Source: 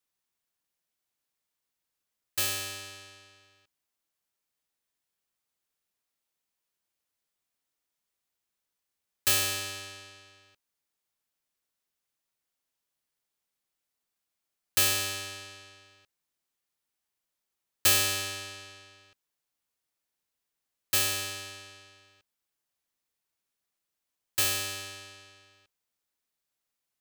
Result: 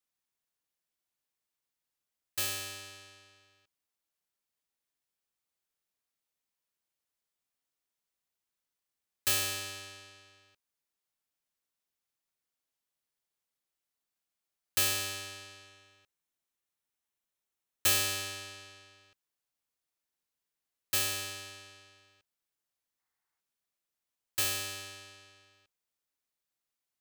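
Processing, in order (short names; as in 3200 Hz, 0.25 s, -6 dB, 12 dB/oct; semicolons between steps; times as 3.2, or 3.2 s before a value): 15.66–17.89 notch 4700 Hz, Q 9.9; 22.99–23.4 spectral gain 710–2200 Hz +8 dB; gain -4 dB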